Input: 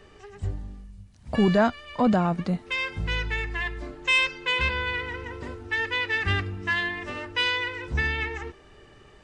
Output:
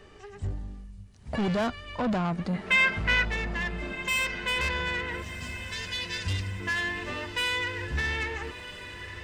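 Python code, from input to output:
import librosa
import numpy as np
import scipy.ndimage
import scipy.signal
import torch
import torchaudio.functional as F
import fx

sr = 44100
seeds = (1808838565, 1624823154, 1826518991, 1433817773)

y = fx.curve_eq(x, sr, hz=(170.0, 1000.0, 5100.0), db=(0, -29, 11), at=(5.22, 6.6))
y = 10.0 ** (-24.0 / 20.0) * np.tanh(y / 10.0 ** (-24.0 / 20.0))
y = fx.peak_eq(y, sr, hz=1700.0, db=12.0, octaves=1.6, at=(2.54, 3.25))
y = fx.echo_diffused(y, sr, ms=1344, feedback_pct=56, wet_db=-12.0)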